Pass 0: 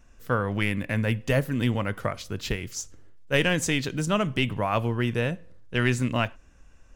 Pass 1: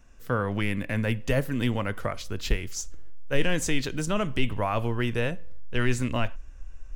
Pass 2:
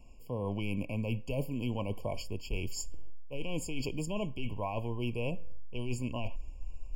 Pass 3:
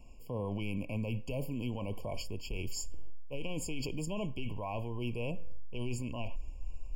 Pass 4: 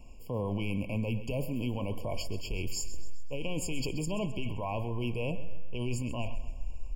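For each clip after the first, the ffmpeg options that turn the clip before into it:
-filter_complex "[0:a]asubboost=boost=7.5:cutoff=51,acrossover=split=500[a][b];[b]alimiter=limit=-19dB:level=0:latency=1:release=19[c];[a][c]amix=inputs=2:normalize=0"
-af "areverse,acompressor=threshold=-31dB:ratio=10,areverse,afftfilt=real='re*eq(mod(floor(b*sr/1024/1100),2),0)':imag='im*eq(mod(floor(b*sr/1024/1100),2),0)':win_size=1024:overlap=0.75,volume=1.5dB"
-af "alimiter=level_in=5dB:limit=-24dB:level=0:latency=1:release=25,volume=-5dB,volume=1dB"
-af "aecho=1:1:131|262|393|524|655:0.2|0.0978|0.0479|0.0235|0.0115,volume=3.5dB"

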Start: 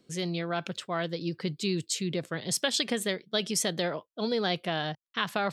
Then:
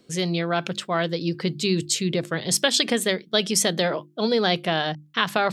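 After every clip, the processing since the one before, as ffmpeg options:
-af "bandreject=f=50:t=h:w=6,bandreject=f=100:t=h:w=6,bandreject=f=150:t=h:w=6,bandreject=f=200:t=h:w=6,bandreject=f=250:t=h:w=6,bandreject=f=300:t=h:w=6,bandreject=f=350:t=h:w=6,volume=7.5dB"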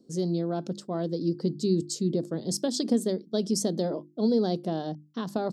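-af "firequalizer=gain_entry='entry(120,0);entry(240,11);entry(490,3);entry(1300,-11);entry(2300,-23);entry(4700,0);entry(11000,-5)':delay=0.05:min_phase=1,volume=-8dB"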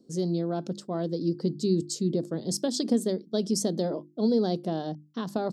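-af anull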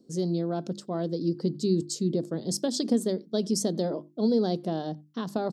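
-filter_complex "[0:a]asplit=2[a][b];[b]adelay=90,highpass=300,lowpass=3.4k,asoftclip=type=hard:threshold=-22.5dB,volume=-29dB[c];[a][c]amix=inputs=2:normalize=0"

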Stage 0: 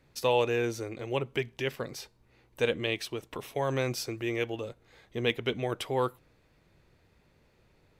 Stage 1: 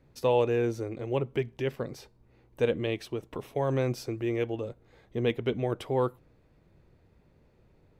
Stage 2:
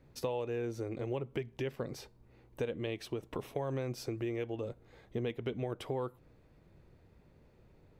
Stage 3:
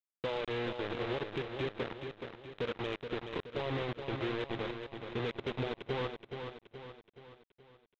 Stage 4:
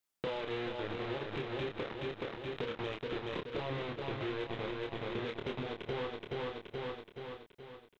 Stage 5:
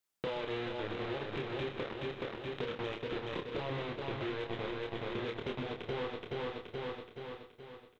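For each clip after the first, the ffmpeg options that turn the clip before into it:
-af "tiltshelf=f=1.1k:g=6,volume=-2dB"
-af "acompressor=threshold=-33dB:ratio=6"
-af "aresample=8000,acrusher=bits=5:mix=0:aa=0.000001,aresample=44100,asoftclip=type=tanh:threshold=-26.5dB,aecho=1:1:424|848|1272|1696|2120|2544:0.447|0.219|0.107|0.0526|0.0258|0.0126"
-filter_complex "[0:a]asplit=2[a][b];[b]alimiter=level_in=11dB:limit=-24dB:level=0:latency=1,volume=-11dB,volume=-3dB[c];[a][c]amix=inputs=2:normalize=0,acompressor=threshold=-40dB:ratio=6,asplit=2[d][e];[e]adelay=28,volume=-4.5dB[f];[d][f]amix=inputs=2:normalize=0,volume=3.5dB"
-af "aecho=1:1:127:0.266"

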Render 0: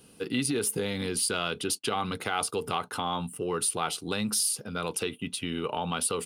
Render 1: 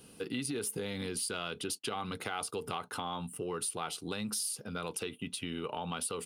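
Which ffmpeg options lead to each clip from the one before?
-af "acompressor=threshold=-39dB:ratio=2"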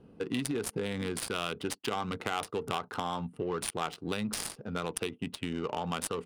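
-af "aeval=exprs='0.112*(cos(1*acos(clip(val(0)/0.112,-1,1)))-cos(1*PI/2))+0.00282*(cos(7*acos(clip(val(0)/0.112,-1,1)))-cos(7*PI/2))':c=same,highshelf=f=8.3k:g=10.5,adynamicsmooth=sensitivity=6.5:basefreq=950,volume=5dB"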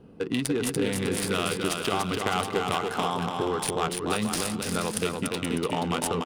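-af "aecho=1:1:290|478.5|601|680.7|732.4:0.631|0.398|0.251|0.158|0.1,volume=5dB"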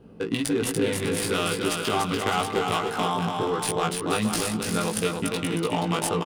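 -filter_complex "[0:a]asplit=2[a][b];[b]adelay=18,volume=-2.5dB[c];[a][c]amix=inputs=2:normalize=0"

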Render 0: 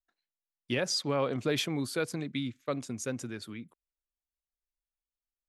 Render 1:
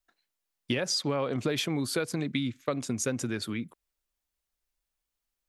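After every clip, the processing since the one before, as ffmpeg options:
-af "acompressor=threshold=-35dB:ratio=6,volume=9dB"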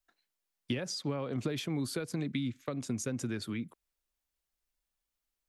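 -filter_complex "[0:a]acrossover=split=310[a][b];[b]acompressor=threshold=-40dB:ratio=2[c];[a][c]amix=inputs=2:normalize=0,volume=-2dB"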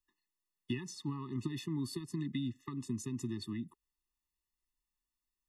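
-af "afftfilt=real='re*eq(mod(floor(b*sr/1024/420),2),0)':imag='im*eq(mod(floor(b*sr/1024/420),2),0)':win_size=1024:overlap=0.75,volume=-2.5dB"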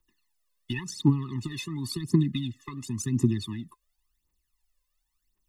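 -af "aphaser=in_gain=1:out_gain=1:delay=2:decay=0.77:speed=0.93:type=triangular,volume=5.5dB"

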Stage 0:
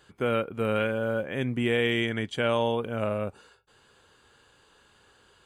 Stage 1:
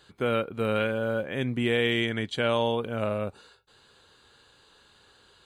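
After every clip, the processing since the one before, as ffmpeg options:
-af "equalizer=f=4k:w=4.8:g=11"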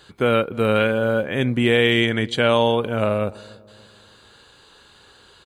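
-filter_complex "[0:a]asplit=2[a][b];[b]adelay=289,lowpass=f=830:p=1,volume=-21dB,asplit=2[c][d];[d]adelay=289,lowpass=f=830:p=1,volume=0.5,asplit=2[e][f];[f]adelay=289,lowpass=f=830:p=1,volume=0.5,asplit=2[g][h];[h]adelay=289,lowpass=f=830:p=1,volume=0.5[i];[a][c][e][g][i]amix=inputs=5:normalize=0,volume=8dB"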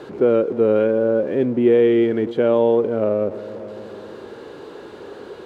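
-af "aeval=exprs='val(0)+0.5*0.0473*sgn(val(0))':c=same,bandpass=f=380:t=q:w=2:csg=0,volume=6dB"

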